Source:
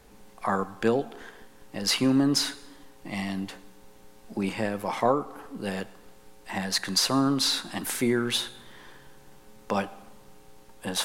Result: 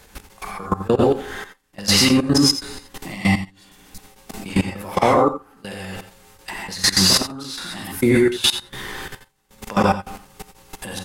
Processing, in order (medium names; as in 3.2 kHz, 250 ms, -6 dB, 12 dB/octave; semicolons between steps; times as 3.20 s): trance gate "x.x.x.xxx...x" 101 bpm -24 dB; high-pass 48 Hz 6 dB/octave; gated-style reverb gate 150 ms rising, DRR -6.5 dB; in parallel at 0 dB: compression 5:1, threshold -29 dBFS, peak gain reduction 14.5 dB; on the sum: bass shelf 110 Hz +11.5 dB; level held to a coarse grid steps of 19 dB; on a send: multi-tap echo 85/96 ms -13.5/-19.5 dB; on the sum: spectral replace 3.62–3.99 s, 240–3800 Hz; tape noise reduction on one side only encoder only; trim +4.5 dB